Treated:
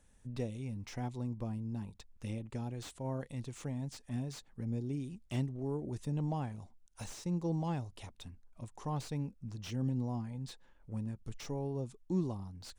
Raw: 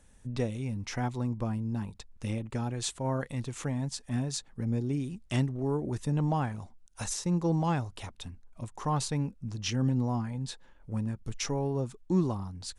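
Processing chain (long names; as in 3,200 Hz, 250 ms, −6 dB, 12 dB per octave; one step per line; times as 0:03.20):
dynamic equaliser 1,400 Hz, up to −8 dB, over −53 dBFS, Q 1.3
slew-rate limiting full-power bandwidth 50 Hz
level −6.5 dB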